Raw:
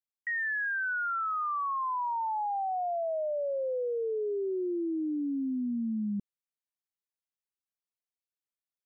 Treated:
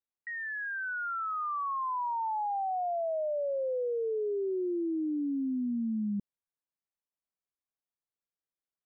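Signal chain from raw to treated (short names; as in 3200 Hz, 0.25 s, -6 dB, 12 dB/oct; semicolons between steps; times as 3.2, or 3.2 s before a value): LPF 1400 Hz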